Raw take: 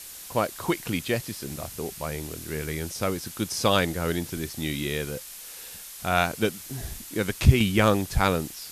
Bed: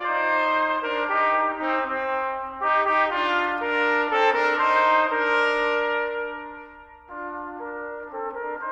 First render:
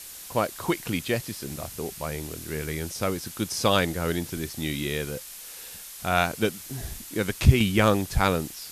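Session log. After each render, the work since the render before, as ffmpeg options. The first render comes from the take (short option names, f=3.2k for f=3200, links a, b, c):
-af anull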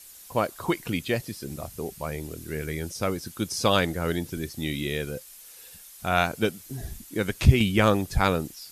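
-af "afftdn=nr=9:nf=-42"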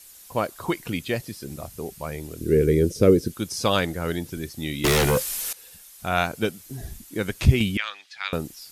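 -filter_complex "[0:a]asettb=1/sr,asplit=3[a][b][c];[a]atrim=end=2.414[d];[b]atrim=start=2.41:end=3.34,asetpts=PTS-STARTPTS,afade=t=in:d=0.004:c=qsin,afade=t=out:st=0.926:d=0.004:c=qsin,lowshelf=f=600:t=q:w=3:g=10[e];[c]atrim=start=3.336[f];[d][e]acrossfade=d=0.004:c1=hsin:c2=qsin[g];[g][f]acrossfade=d=0.004:c1=qsin:c2=hsin,asettb=1/sr,asplit=3[h][i][j];[h]atrim=end=4.844[k];[i]atrim=start=4.84:end=5.53,asetpts=PTS-STARTPTS,afade=t=in:d=0.004:c=qsin,afade=t=out:st=0.686:d=0.004:c=qsin,aeval=exprs='0.158*sin(PI/2*5.01*val(0)/0.158)':c=same[l];[j]atrim=start=5.526[m];[k][l]acrossfade=d=0.004:c1=hsin:c2=qsin[n];[n][m]acrossfade=d=0.004:c1=qsin:c2=hsin,asettb=1/sr,asplit=3[o][p][q];[o]atrim=end=7.774[r];[p]atrim=start=7.77:end=8.33,asetpts=PTS-STARTPTS,afade=t=in:d=0.004:c=qsin,afade=t=out:st=0.556:d=0.004:c=qsin,asuperpass=centerf=2800:order=4:qfactor=1[s];[q]atrim=start=8.326[t];[r][s]acrossfade=d=0.004:c1=hsin:c2=qsin[u];[u][t]acrossfade=d=0.004:c1=qsin:c2=hsin"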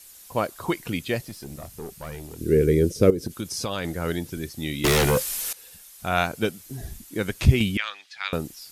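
-filter_complex "[0:a]asettb=1/sr,asplit=3[a][b][c];[a]atrim=end=1.234[d];[b]atrim=start=1.23:end=2.39,asetpts=PTS-STARTPTS,afade=t=in:d=0.004:c=qsin,afade=t=out:st=1.156:d=0.004:c=qsin,aeval=exprs='(tanh(28.2*val(0)+0.35)-tanh(0.35))/28.2':c=same[e];[c]atrim=start=2.386[f];[d][e]acrossfade=d=0.004:c1=hsin:c2=qsin[g];[g][f]acrossfade=d=0.004:c1=qsin:c2=hsin,asettb=1/sr,asplit=3[h][i][j];[h]atrim=end=3.104[k];[i]atrim=start=3.1:end=3.85,asetpts=PTS-STARTPTS,afade=t=in:d=0.004:c=qsin,afade=t=out:st=0.746:d=0.004:c=qsin,acompressor=threshold=-24dB:ratio=6:attack=3.2:release=140:knee=1:detection=peak[l];[j]atrim=start=3.846[m];[k][l]acrossfade=d=0.004:c1=hsin:c2=qsin[n];[n][m]acrossfade=d=0.004:c1=qsin:c2=hsin"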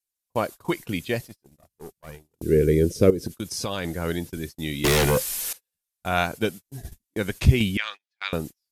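-af "agate=range=-39dB:threshold=-34dB:ratio=16:detection=peak,bandreject=f=1.3k:w=20"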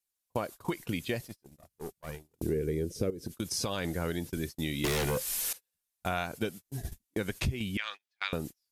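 -af "acompressor=threshold=-29dB:ratio=6"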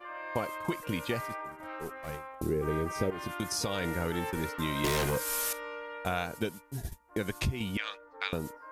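-filter_complex "[1:a]volume=-18dB[a];[0:a][a]amix=inputs=2:normalize=0"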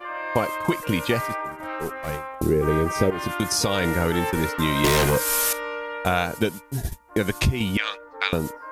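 -af "volume=10dB"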